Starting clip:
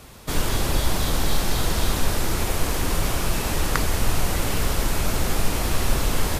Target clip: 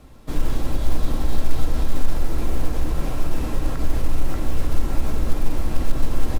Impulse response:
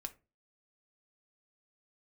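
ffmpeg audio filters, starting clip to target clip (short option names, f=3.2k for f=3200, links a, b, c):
-filter_complex "[0:a]asplit=2[a][b];[b]adelay=584,lowpass=f=1.4k:p=1,volume=-4dB,asplit=2[c][d];[d]adelay=584,lowpass=f=1.4k:p=1,volume=0.29,asplit=2[e][f];[f]adelay=584,lowpass=f=1.4k:p=1,volume=0.29,asplit=2[g][h];[h]adelay=584,lowpass=f=1.4k:p=1,volume=0.29[i];[a][c][e][g][i]amix=inputs=5:normalize=0,alimiter=limit=-12.5dB:level=0:latency=1:release=68,highshelf=f=5.2k:g=-4.5[j];[1:a]atrim=start_sample=2205,afade=t=out:st=0.18:d=0.01,atrim=end_sample=8379[k];[j][k]afir=irnorm=-1:irlink=0,acrusher=bits=6:mode=log:mix=0:aa=0.000001,tiltshelf=f=760:g=5,volume=-2dB"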